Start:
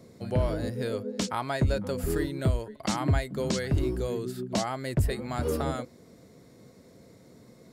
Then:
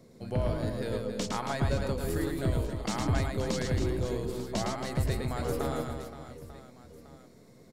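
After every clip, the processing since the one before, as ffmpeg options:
-filter_complex "[0:a]aeval=exprs='if(lt(val(0),0),0.708*val(0),val(0))':c=same,asplit=2[s0][s1];[s1]aecho=0:1:110|275|522.5|893.8|1451:0.631|0.398|0.251|0.158|0.1[s2];[s0][s2]amix=inputs=2:normalize=0,volume=0.708"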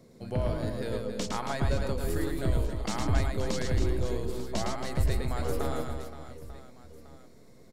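-af "asubboost=boost=3.5:cutoff=63"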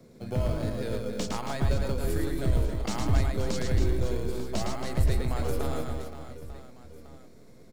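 -filter_complex "[0:a]acrossover=split=180|3000[s0][s1][s2];[s1]acompressor=threshold=0.0282:ratio=6[s3];[s0][s3][s2]amix=inputs=3:normalize=0,asplit=2[s4][s5];[s5]acrusher=samples=23:mix=1:aa=0.000001,volume=0.335[s6];[s4][s6]amix=inputs=2:normalize=0"

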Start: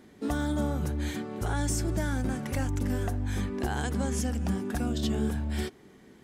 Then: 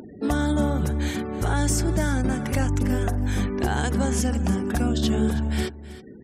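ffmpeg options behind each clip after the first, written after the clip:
-af "afftfilt=real='re*gte(hypot(re,im),0.00282)':imag='im*gte(hypot(re,im),0.00282)':win_size=1024:overlap=0.75,aecho=1:1:322:0.158,acompressor=mode=upward:threshold=0.00891:ratio=2.5,volume=2.11"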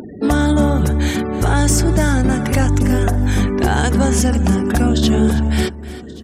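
-af "aecho=1:1:1129|2258:0.0708|0.0127,asoftclip=type=tanh:threshold=0.237,volume=2.82"

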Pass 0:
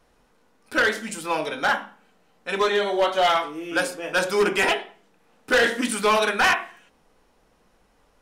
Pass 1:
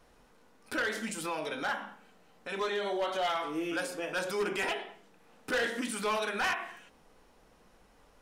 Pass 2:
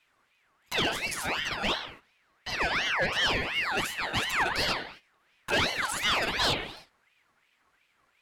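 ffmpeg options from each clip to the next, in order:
-af "alimiter=level_in=1.26:limit=0.0631:level=0:latency=1:release=167,volume=0.794"
-af "agate=range=0.251:threshold=0.00251:ratio=16:detection=peak,aeval=exprs='val(0)*sin(2*PI*1800*n/s+1800*0.4/2.8*sin(2*PI*2.8*n/s))':c=same,volume=2.24"

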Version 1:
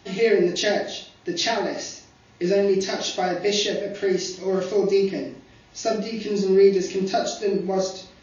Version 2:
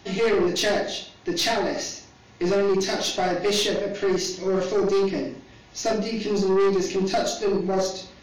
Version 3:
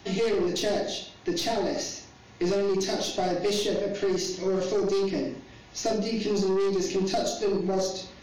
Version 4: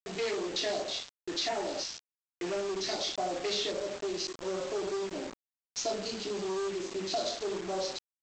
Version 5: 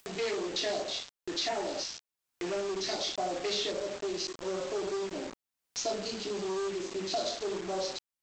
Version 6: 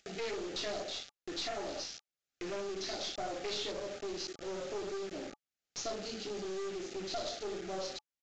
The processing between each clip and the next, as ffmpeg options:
-af "aeval=exprs='(tanh(10*val(0)+0.25)-tanh(0.25))/10':c=same,volume=1.41"
-filter_complex "[0:a]acrossover=split=840|3100[s0][s1][s2];[s0]acompressor=threshold=0.0708:ratio=4[s3];[s1]acompressor=threshold=0.00631:ratio=4[s4];[s2]acompressor=threshold=0.0251:ratio=4[s5];[s3][s4][s5]amix=inputs=3:normalize=0"
-af "highpass=f=980:p=1,afwtdn=0.0112,aresample=16000,acrusher=bits=6:mix=0:aa=0.000001,aresample=44100"
-af "acompressor=mode=upward:threshold=0.0112:ratio=2.5"
-af "asuperstop=centerf=1000:order=20:qfactor=3.2,aeval=exprs='clip(val(0),-1,0.0158)':c=same,aresample=16000,aresample=44100,volume=0.668"

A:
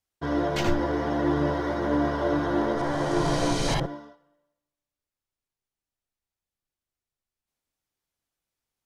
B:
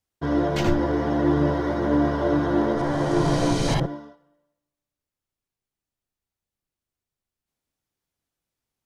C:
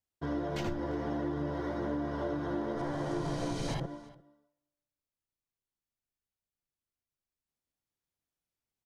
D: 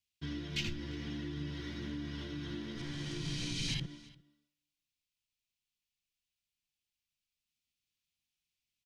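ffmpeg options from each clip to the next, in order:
-af "equalizer=f=150:w=0.35:g=5.5"
-af "acompressor=threshold=0.0794:ratio=6,aecho=1:1:348:0.0708,volume=0.376"
-af "firequalizer=gain_entry='entry(210,0);entry(590,-22);entry(2500,12);entry(10000,1)':delay=0.05:min_phase=1,volume=0.794"

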